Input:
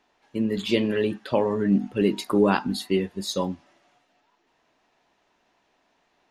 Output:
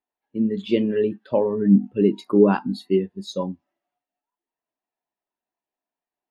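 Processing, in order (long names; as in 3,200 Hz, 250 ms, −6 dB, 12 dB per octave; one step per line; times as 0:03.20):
every bin expanded away from the loudest bin 1.5 to 1
level +3.5 dB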